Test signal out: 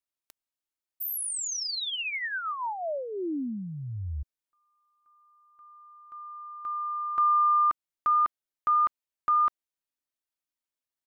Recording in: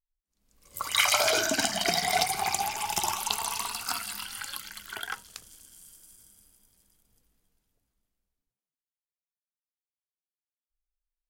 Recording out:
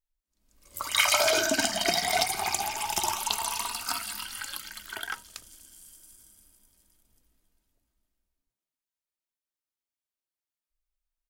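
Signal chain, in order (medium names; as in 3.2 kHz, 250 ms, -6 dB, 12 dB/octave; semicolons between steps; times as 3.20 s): comb 3.2 ms, depth 37%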